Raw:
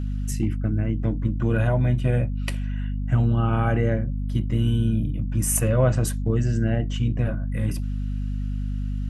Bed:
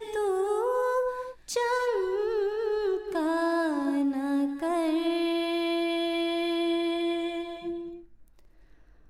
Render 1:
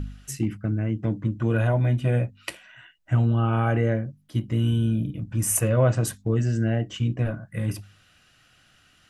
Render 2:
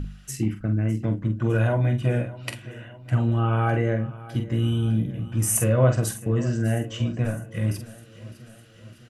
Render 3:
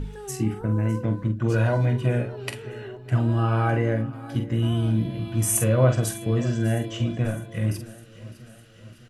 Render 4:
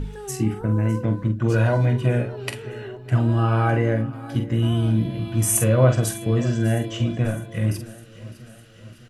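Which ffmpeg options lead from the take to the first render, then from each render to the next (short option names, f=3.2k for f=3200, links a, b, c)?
-af "bandreject=f=50:t=h:w=4,bandreject=f=100:t=h:w=4,bandreject=f=150:t=h:w=4,bandreject=f=200:t=h:w=4,bandreject=f=250:t=h:w=4"
-filter_complex "[0:a]asplit=2[a][b];[b]adelay=46,volume=-7.5dB[c];[a][c]amix=inputs=2:normalize=0,aecho=1:1:606|1212|1818|2424|3030:0.126|0.073|0.0424|0.0246|0.0142"
-filter_complex "[1:a]volume=-11.5dB[a];[0:a][a]amix=inputs=2:normalize=0"
-af "volume=2.5dB"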